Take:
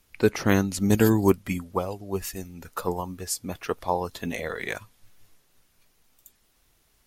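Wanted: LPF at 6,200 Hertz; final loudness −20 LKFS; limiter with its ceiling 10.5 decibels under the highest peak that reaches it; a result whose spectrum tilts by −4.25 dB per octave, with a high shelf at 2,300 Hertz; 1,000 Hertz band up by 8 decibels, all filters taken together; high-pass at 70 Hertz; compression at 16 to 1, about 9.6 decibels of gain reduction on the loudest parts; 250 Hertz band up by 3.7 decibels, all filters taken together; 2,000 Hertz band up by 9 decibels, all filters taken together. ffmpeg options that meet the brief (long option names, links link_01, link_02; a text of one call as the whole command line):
ffmpeg -i in.wav -af "highpass=70,lowpass=6200,equalizer=frequency=250:width_type=o:gain=4.5,equalizer=frequency=1000:width_type=o:gain=7,equalizer=frequency=2000:width_type=o:gain=6,highshelf=frequency=2300:gain=6,acompressor=threshold=-19dB:ratio=16,volume=11dB,alimiter=limit=-7dB:level=0:latency=1" out.wav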